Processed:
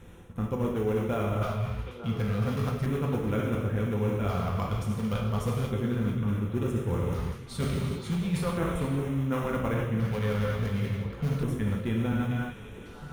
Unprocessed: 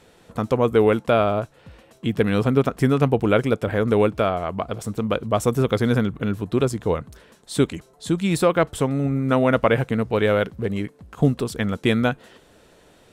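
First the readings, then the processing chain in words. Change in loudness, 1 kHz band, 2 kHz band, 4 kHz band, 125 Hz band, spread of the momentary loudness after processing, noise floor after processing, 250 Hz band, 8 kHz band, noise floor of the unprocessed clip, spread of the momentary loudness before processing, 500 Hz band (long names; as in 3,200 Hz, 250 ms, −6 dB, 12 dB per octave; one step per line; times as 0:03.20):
−8.0 dB, −10.0 dB, −10.5 dB, −10.0 dB, −3.0 dB, 5 LU, −45 dBFS, −7.5 dB, −10.0 dB, −54 dBFS, 9 LU, −12.0 dB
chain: parametric band 620 Hz −7 dB 0.39 octaves
in parallel at −8 dB: sample-and-hold swept by an LFO 33×, swing 160% 3.2 Hz
on the sum: low-shelf EQ 150 Hz +11.5 dB
reverb whose tail is shaped and stops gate 430 ms falling, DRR −1.5 dB
auto-filter notch square 0.35 Hz 320–4,600 Hz
reversed playback
downward compressor 5 to 1, threshold −24 dBFS, peak gain reduction 17.5 dB
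reversed playback
notch filter 7,700 Hz, Q 6.2
echo through a band-pass that steps 449 ms, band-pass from 2,800 Hz, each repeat −1.4 octaves, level −6 dB
level −3 dB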